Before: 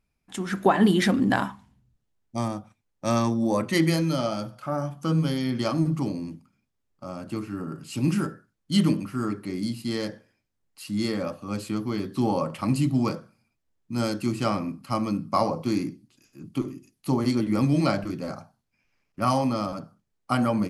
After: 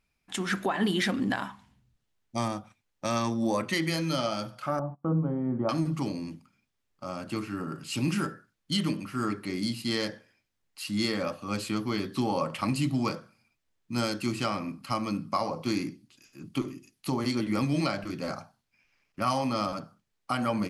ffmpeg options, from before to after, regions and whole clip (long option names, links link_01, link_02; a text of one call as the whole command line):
ffmpeg -i in.wav -filter_complex "[0:a]asettb=1/sr,asplit=3[link_01][link_02][link_03];[link_01]atrim=end=4.794[link_04];[link_02]atrim=start=4.79:end=5.69,asetpts=PTS-STARTPTS,afade=type=in:duration=0.004:curve=qsin,afade=type=out:start_time=0.896:duration=0.004:curve=qsin,lowpass=frequency=1000:width=0.5412,lowpass=frequency=1000:width=1.3066,agate=range=-21dB:threshold=-41dB:ratio=16:release=100:detection=peak[link_05];[link_03]atrim=start=5.686[link_06];[link_04][link_05]acrossfade=duration=0.004:curve1=hsin:curve2=qsin[link_07];[link_07][link_06]acrossfade=duration=0.004:curve1=qsin:curve2=hsin,equalizer=frequency=2900:width_type=o:width=2.5:gain=5.5,alimiter=limit=-16dB:level=0:latency=1:release=375,lowshelf=frequency=420:gain=-3" out.wav